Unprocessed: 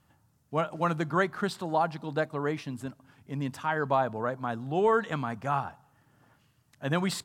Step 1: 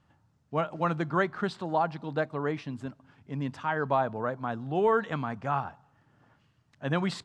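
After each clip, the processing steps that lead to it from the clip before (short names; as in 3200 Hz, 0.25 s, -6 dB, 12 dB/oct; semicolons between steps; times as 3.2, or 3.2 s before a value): air absorption 100 m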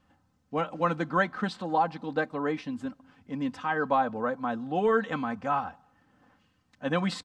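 comb 3.9 ms, depth 69%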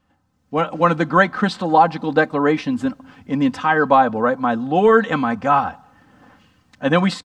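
AGC gain up to 13 dB; gain +1 dB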